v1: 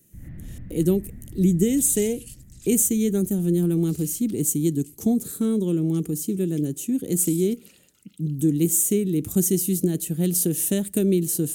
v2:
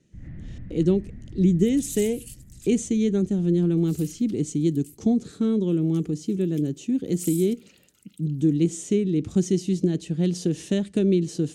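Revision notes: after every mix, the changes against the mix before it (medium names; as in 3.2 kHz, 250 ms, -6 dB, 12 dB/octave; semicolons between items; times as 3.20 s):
speech: add low-pass 5.5 kHz 24 dB/octave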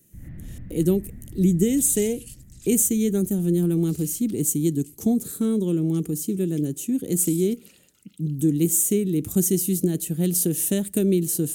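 speech: remove low-pass 5.5 kHz 24 dB/octave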